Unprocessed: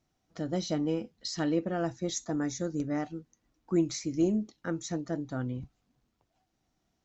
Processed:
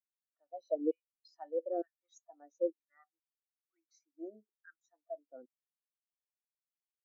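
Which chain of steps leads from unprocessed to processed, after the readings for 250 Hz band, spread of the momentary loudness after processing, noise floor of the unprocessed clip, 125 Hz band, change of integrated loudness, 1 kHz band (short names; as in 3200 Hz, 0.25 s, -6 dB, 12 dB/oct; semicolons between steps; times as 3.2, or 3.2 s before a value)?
-15.5 dB, 18 LU, -78 dBFS, under -40 dB, -7.0 dB, -8.5 dB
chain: LFO high-pass saw down 1.1 Hz 380–2100 Hz; spectral expander 2.5:1; gain -4 dB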